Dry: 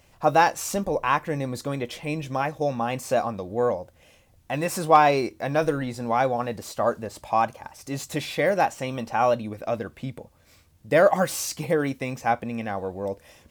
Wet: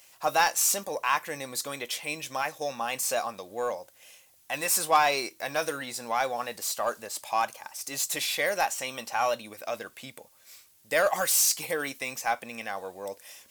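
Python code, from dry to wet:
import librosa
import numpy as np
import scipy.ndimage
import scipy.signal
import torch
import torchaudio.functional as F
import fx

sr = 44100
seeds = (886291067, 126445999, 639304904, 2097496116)

p1 = fx.highpass(x, sr, hz=1400.0, slope=6)
p2 = fx.high_shelf(p1, sr, hz=5100.0, db=11.0)
p3 = 10.0 ** (-24.0 / 20.0) * np.tanh(p2 / 10.0 ** (-24.0 / 20.0))
p4 = p2 + (p3 * librosa.db_to_amplitude(-4.0))
y = p4 * librosa.db_to_amplitude(-2.5)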